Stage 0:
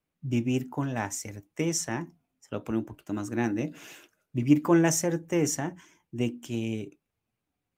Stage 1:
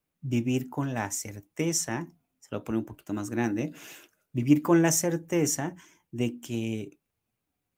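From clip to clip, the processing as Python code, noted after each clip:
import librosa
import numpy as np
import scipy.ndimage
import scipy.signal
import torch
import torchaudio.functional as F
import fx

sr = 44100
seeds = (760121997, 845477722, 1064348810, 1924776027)

y = fx.high_shelf(x, sr, hz=9800.0, db=7.5)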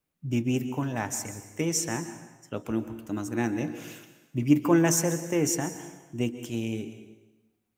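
y = fx.rev_plate(x, sr, seeds[0], rt60_s=1.1, hf_ratio=0.9, predelay_ms=115, drr_db=11.0)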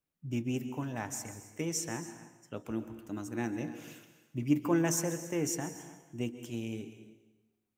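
y = x + 10.0 ** (-18.5 / 20.0) * np.pad(x, (int(280 * sr / 1000.0), 0))[:len(x)]
y = y * librosa.db_to_amplitude(-7.0)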